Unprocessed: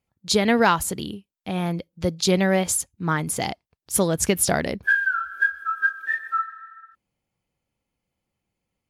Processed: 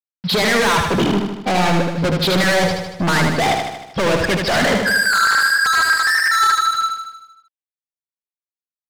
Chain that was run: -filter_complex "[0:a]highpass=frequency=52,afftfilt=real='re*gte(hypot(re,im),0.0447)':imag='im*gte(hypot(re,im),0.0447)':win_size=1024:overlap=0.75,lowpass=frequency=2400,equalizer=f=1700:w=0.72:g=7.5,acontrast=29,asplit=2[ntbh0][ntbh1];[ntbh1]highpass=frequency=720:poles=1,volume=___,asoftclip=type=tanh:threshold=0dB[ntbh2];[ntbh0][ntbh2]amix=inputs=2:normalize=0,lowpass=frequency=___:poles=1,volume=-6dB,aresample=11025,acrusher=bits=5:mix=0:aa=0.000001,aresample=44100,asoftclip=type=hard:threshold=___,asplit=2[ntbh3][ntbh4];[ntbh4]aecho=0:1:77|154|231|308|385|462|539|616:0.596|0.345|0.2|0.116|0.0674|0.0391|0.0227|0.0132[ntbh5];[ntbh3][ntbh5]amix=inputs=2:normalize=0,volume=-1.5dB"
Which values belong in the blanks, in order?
36dB, 1900, -15dB